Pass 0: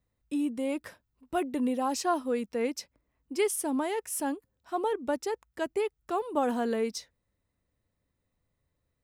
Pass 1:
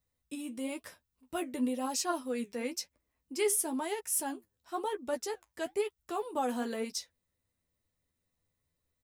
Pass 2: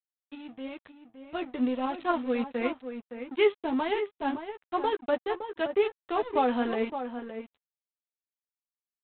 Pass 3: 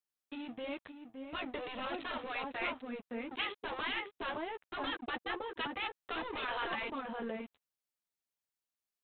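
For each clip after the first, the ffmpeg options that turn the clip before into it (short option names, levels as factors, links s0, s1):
-filter_complex "[0:a]highshelf=f=3200:g=9.5,flanger=delay=1:depth=9.2:regen=72:speed=1:shape=triangular,asplit=2[s0][s1];[s1]adelay=12,volume=0.473[s2];[s0][s2]amix=inputs=2:normalize=0,volume=0.794"
-filter_complex "[0:a]aresample=8000,aeval=exprs='sgn(val(0))*max(abs(val(0))-0.00422,0)':c=same,aresample=44100,dynaudnorm=f=660:g=5:m=2.51,asplit=2[s0][s1];[s1]adelay=565.6,volume=0.355,highshelf=f=4000:g=-12.7[s2];[s0][s2]amix=inputs=2:normalize=0"
-af "afftfilt=real='re*lt(hypot(re,im),0.112)':imag='im*lt(hypot(re,im),0.112)':win_size=1024:overlap=0.75,volume=1.19"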